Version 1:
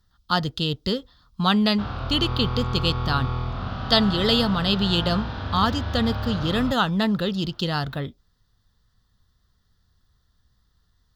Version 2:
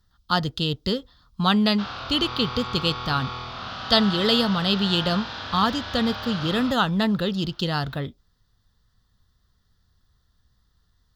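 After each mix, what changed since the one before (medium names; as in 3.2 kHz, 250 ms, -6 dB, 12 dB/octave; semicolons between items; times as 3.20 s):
background: add tilt EQ +4 dB/octave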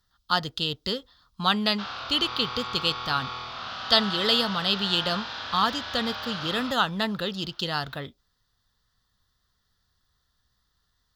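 master: add bass shelf 410 Hz -10.5 dB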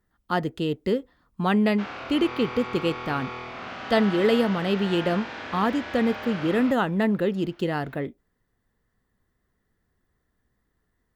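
speech: add treble shelf 3.2 kHz -8.5 dB; master: add FFT filter 100 Hz 0 dB, 340 Hz +12 dB, 1.3 kHz -4 dB, 2.2 kHz +7 dB, 3.5 kHz -11 dB, 4.9 kHz -11 dB, 8.1 kHz +4 dB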